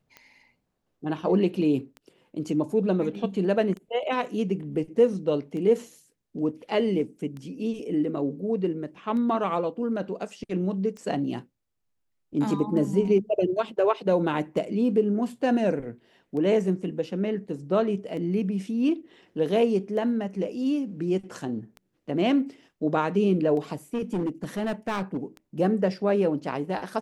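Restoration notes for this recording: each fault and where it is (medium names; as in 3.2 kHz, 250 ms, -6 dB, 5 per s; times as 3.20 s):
tick 33 1/3 rpm -27 dBFS
23.94–25.17 s: clipped -23 dBFS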